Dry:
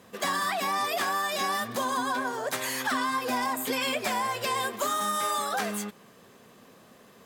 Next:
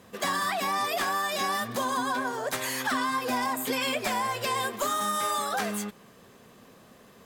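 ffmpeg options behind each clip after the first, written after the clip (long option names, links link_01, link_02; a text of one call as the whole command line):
ffmpeg -i in.wav -af "lowshelf=frequency=72:gain=11" out.wav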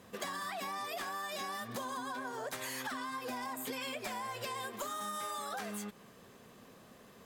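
ffmpeg -i in.wav -af "acompressor=threshold=-34dB:ratio=6,volume=-3.5dB" out.wav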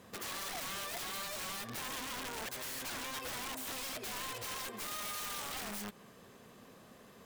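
ffmpeg -i in.wav -af "aeval=exprs='(mod(63.1*val(0)+1,2)-1)/63.1':channel_layout=same" out.wav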